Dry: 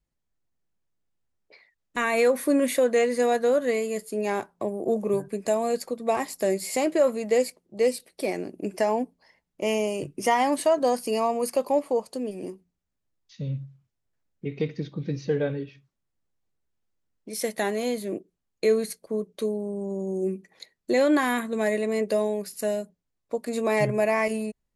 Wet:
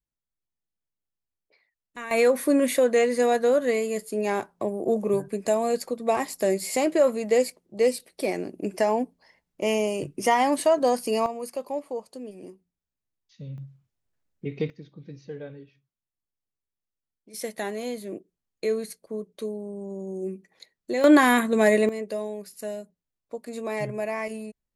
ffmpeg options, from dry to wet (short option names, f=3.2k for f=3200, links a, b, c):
-af "asetnsamples=n=441:p=0,asendcmd='2.11 volume volume 1dB;11.26 volume volume -7.5dB;13.58 volume volume -0.5dB;14.7 volume volume -12.5dB;17.34 volume volume -4.5dB;21.04 volume volume 6dB;21.89 volume volume -6.5dB',volume=-11dB"